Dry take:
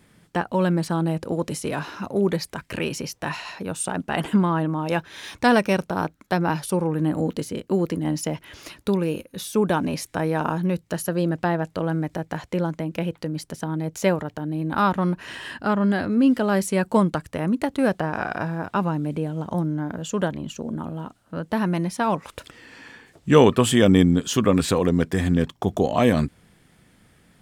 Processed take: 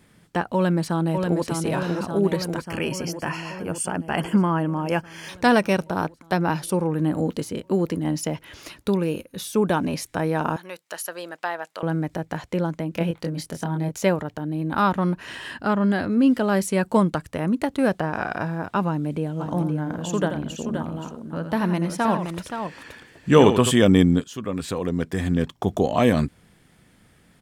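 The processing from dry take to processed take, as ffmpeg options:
ffmpeg -i in.wav -filter_complex "[0:a]asplit=2[link_01][link_02];[link_02]afade=type=in:start_time=0.55:duration=0.01,afade=type=out:start_time=1.46:duration=0.01,aecho=0:1:590|1180|1770|2360|2950|3540|4130|4720|5310|5900|6490|7080:0.595662|0.416964|0.291874|0.204312|0.143018|0.100113|0.0700791|0.0490553|0.0343387|0.0240371|0.016826|0.0117782[link_03];[link_01][link_03]amix=inputs=2:normalize=0,asettb=1/sr,asplit=3[link_04][link_05][link_06];[link_04]atrim=end=2.644[link_07];[link_05]atrim=start=2.64:end=5.29,asetpts=PTS-STARTPTS,afade=type=in:duration=0.004:curve=qsin,afade=type=out:start_time=2.646:duration=0.004:curve=qsin,asuperstop=centerf=3800:order=8:qfactor=4.5[link_08];[link_06]atrim=start=5.286[link_09];[link_07][link_08]acrossfade=duration=0.004:curve1=hsin:curve2=qsin[link_10];[link_10][link_09]acrossfade=duration=0.004:curve1=qsin:curve2=hsin,asettb=1/sr,asplit=3[link_11][link_12][link_13];[link_11]atrim=end=10.564[link_14];[link_12]atrim=start=10.56:end=11.83,asetpts=PTS-STARTPTS,afade=type=in:duration=0.004:curve=qsin,afade=type=out:start_time=1.266:duration=0.004:curve=qsin,highpass=790[link_15];[link_13]atrim=start=11.826[link_16];[link_14][link_15]acrossfade=duration=0.004:curve1=hsin:curve2=qsin[link_17];[link_17][link_16]acrossfade=duration=0.004:curve1=qsin:curve2=hsin,asettb=1/sr,asplit=3[link_18][link_19][link_20];[link_18]atrim=end=12.944[link_21];[link_19]atrim=start=12.94:end=13.92,asetpts=PTS-STARTPTS,afade=type=in:duration=0.004:curve=qsin,afade=type=out:start_time=0.976:duration=0.004:curve=qsin,asplit=2[link_22][link_23];[link_23]adelay=24,volume=-3.5dB[link_24];[link_22][link_24]amix=inputs=2:normalize=0,atrim=end_sample=43218[link_25];[link_20]atrim=start=13.916[link_26];[link_21][link_25]acrossfade=duration=0.004:curve1=hsin:curve2=qsin[link_27];[link_27][link_26]acrossfade=duration=0.004:curve1=qsin:curve2=hsin,asplit=3[link_28][link_29][link_30];[link_28]afade=type=out:start_time=19.39:duration=0.02[link_31];[link_29]aecho=1:1:84|524:0.355|0.422,afade=type=in:start_time=19.39:duration=0.02,afade=type=out:start_time=23.7:duration=0.02[link_32];[link_30]afade=type=in:start_time=23.7:duration=0.02[link_33];[link_31][link_32][link_33]amix=inputs=3:normalize=0,asplit=2[link_34][link_35];[link_34]atrim=end=24.24,asetpts=PTS-STARTPTS,afade=type=out:start_time=24.236:duration=0.004:curve=hsin:silence=0.16788[link_36];[link_35]atrim=start=24.24,asetpts=PTS-STARTPTS,afade=type=in:duration=1.43:silence=0.16788[link_37];[link_36][link_37]concat=n=2:v=0:a=1" out.wav

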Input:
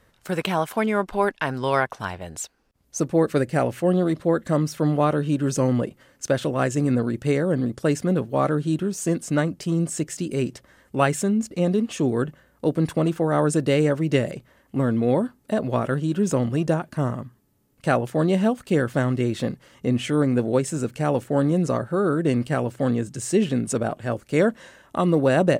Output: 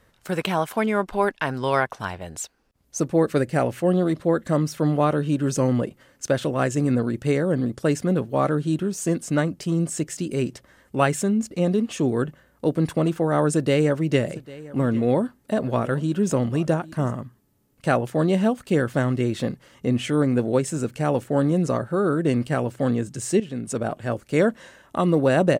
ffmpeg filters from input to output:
ffmpeg -i in.wav -filter_complex "[0:a]asplit=3[link_01][link_02][link_03];[link_01]afade=type=out:start_time=14.28:duration=0.02[link_04];[link_02]aecho=1:1:799:0.106,afade=type=in:start_time=14.28:duration=0.02,afade=type=out:start_time=17.1:duration=0.02[link_05];[link_03]afade=type=in:start_time=17.1:duration=0.02[link_06];[link_04][link_05][link_06]amix=inputs=3:normalize=0,asplit=2[link_07][link_08];[link_07]atrim=end=23.4,asetpts=PTS-STARTPTS,afade=type=out:start_time=23.396:duration=0.004:curve=hsin:silence=0.211349[link_09];[link_08]atrim=start=23.4,asetpts=PTS-STARTPTS,afade=type=in:duration=0.54:silence=0.211349[link_10];[link_09][link_10]concat=n=2:v=0:a=1" out.wav

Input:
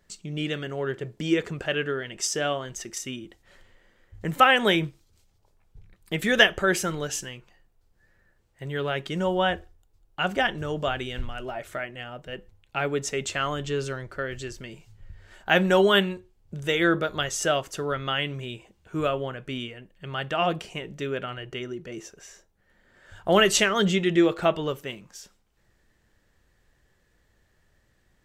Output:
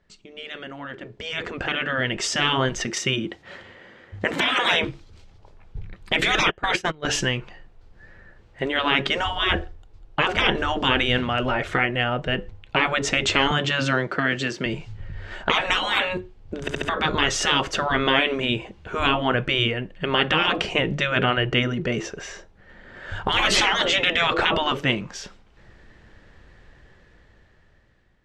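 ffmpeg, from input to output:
ffmpeg -i in.wav -filter_complex "[0:a]asettb=1/sr,asplit=3[link_01][link_02][link_03];[link_01]atrim=end=2.874[link_04];[link_02]atrim=start=2.87:end=4.84,asetpts=PTS-STARTPTS,afade=type=in:duration=0.004:curve=qsin,afade=type=out:start_time=1.966:duration=0.004:curve=qsin,highpass=120[link_05];[link_03]atrim=start=4.836[link_06];[link_04][link_05]acrossfade=duration=0.004:curve1=hsin:curve2=qsin[link_07];[link_07][link_06]acrossfade=duration=0.004:curve1=qsin:curve2=hsin,asettb=1/sr,asplit=3[link_08][link_09][link_10];[link_08]atrim=end=6.404[link_11];[link_09]atrim=start=6.4:end=7.05,asetpts=PTS-STARTPTS,afade=type=in:duration=0.004:curve=qsin,afade=type=out:start_time=0.646:duration=0.004:curve=qsin,agate=range=-31dB:threshold=-27dB:ratio=16:release=100:detection=peak[link_12];[link_10]atrim=start=7.046[link_13];[link_11][link_12]acrossfade=duration=0.004:curve1=hsin:curve2=qsin[link_14];[link_14][link_13]acrossfade=duration=0.004:curve1=qsin:curve2=hsin,asettb=1/sr,asplit=3[link_15][link_16][link_17];[link_15]atrim=end=13.514[link_18];[link_16]atrim=start=13.51:end=14.66,asetpts=PTS-STARTPTS,afade=type=in:duration=0.004:curve=qsin,afade=type=out:start_time=1.146:duration=0.004:curve=qsin,highpass=frequency=160:width=0.5412,highpass=frequency=160:width=1.3066[link_19];[link_17]atrim=start=14.656[link_20];[link_18][link_19]acrossfade=duration=0.004:curve1=hsin:curve2=qsin[link_21];[link_21][link_20]acrossfade=duration=0.004:curve1=qsin:curve2=hsin,asplit=5[link_22][link_23][link_24][link_25][link_26];[link_22]atrim=end=16.682[link_27];[link_23]atrim=start=16.608:end=16.682[link_28];[link_24]atrim=start=16.608:end=16.682[link_29];[link_25]atrim=start=16.608:end=16.682[link_30];[link_26]atrim=start=16.888[link_31];[link_27][link_28]acrossfade=duration=0.004:curve1=hsin:curve2=hsin[link_32];[link_32][link_29]acrossfade=duration=0.004:curve1=hsin:curve2=hsin[link_33];[link_33][link_30]acrossfade=duration=0.004:curve1=hsin:curve2=hsin[link_34];[link_34][link_31]acrossfade=duration=0.004:curve1=hsin:curve2=hsin,afftfilt=real='re*lt(hypot(re,im),0.112)':imag='im*lt(hypot(re,im),0.112)':win_size=1024:overlap=0.75,lowpass=3700,dynaudnorm=framelen=510:gausssize=7:maxgain=16.5dB" out.wav

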